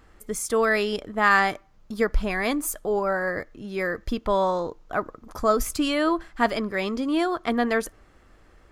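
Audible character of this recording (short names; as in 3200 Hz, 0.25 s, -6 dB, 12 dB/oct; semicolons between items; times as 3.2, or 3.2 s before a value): noise floor -56 dBFS; spectral tilt -4.0 dB/oct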